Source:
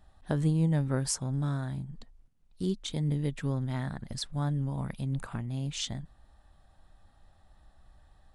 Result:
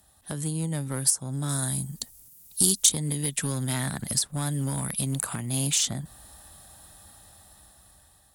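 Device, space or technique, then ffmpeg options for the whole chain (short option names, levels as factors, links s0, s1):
FM broadcast chain: -filter_complex "[0:a]highpass=75,dynaudnorm=f=790:g=5:m=3.98,acrossover=split=250|1500[s0][s1][s2];[s0]acompressor=threshold=0.0355:ratio=4[s3];[s1]acompressor=threshold=0.0282:ratio=4[s4];[s2]acompressor=threshold=0.0178:ratio=4[s5];[s3][s4][s5]amix=inputs=3:normalize=0,aemphasis=mode=production:type=50fm,alimiter=limit=0.119:level=0:latency=1:release=263,asoftclip=type=hard:threshold=0.075,lowpass=f=15000:w=0.5412,lowpass=f=15000:w=1.3066,aemphasis=mode=production:type=50fm,asettb=1/sr,asplit=3[s6][s7][s8];[s6]atrim=end=1.494[s9];[s7]atrim=start=1.49:end=2.92,asetpts=PTS-STARTPTS,afade=t=in:d=0.004:c=qsin,afade=t=out:st=1.426:d=0.004:c=qsin,bass=f=250:g=1,treble=f=4000:g=10[s10];[s8]atrim=start=2.916[s11];[s9][s10]acrossfade=d=0.004:c1=hsin:c2=qsin[s12];[s12][s11]acrossfade=d=0.004:c1=qsin:c2=hsin"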